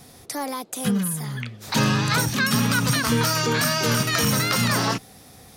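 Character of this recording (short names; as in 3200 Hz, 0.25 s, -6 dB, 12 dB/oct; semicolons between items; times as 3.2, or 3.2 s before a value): noise floor -48 dBFS; spectral tilt -4.0 dB/oct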